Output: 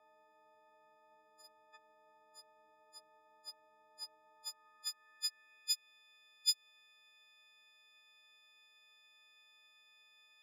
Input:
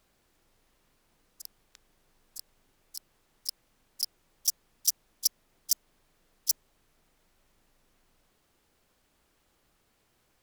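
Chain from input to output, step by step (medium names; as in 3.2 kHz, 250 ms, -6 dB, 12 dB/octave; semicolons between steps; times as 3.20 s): partials quantised in pitch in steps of 6 st; compression 4:1, threshold -13 dBFS, peak gain reduction 6 dB; band-pass sweep 750 Hz -> 3.1 kHz, 4.21–5.93 s; tone controls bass -3 dB, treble -12 dB; trim +8 dB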